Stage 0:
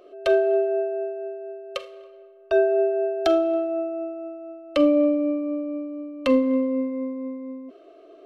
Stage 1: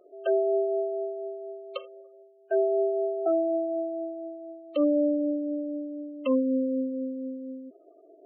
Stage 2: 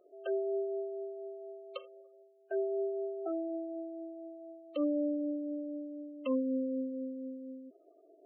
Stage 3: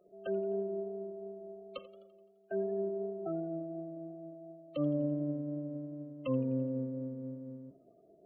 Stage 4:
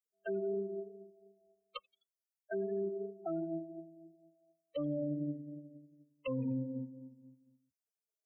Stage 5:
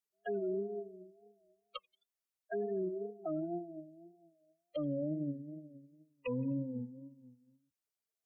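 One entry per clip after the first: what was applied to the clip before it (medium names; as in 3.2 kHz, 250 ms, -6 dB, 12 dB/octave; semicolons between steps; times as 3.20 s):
waveshaping leveller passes 1; spectral gate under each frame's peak -15 dB strong; trim -7 dB
dynamic bell 650 Hz, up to -7 dB, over -41 dBFS, Q 5.8; trim -7 dB
octave divider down 1 oct, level -3 dB; modulated delay 85 ms, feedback 57%, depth 128 cents, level -19 dB; trim -1.5 dB
expander on every frequency bin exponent 3; peak limiter -36.5 dBFS, peak gain reduction 11.5 dB; trim +7 dB
wow and flutter 95 cents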